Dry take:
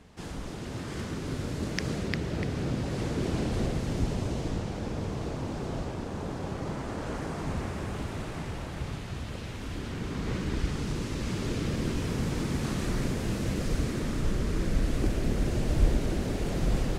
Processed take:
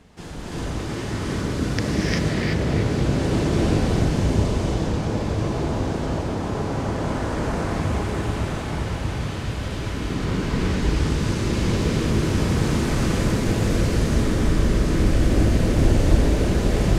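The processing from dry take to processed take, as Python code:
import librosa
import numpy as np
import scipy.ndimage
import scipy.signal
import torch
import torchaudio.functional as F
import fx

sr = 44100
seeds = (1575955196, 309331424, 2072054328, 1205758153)

y = fx.rev_gated(x, sr, seeds[0], gate_ms=410, shape='rising', drr_db=-6.0)
y = fx.doppler_dist(y, sr, depth_ms=0.13)
y = y * librosa.db_to_amplitude(2.5)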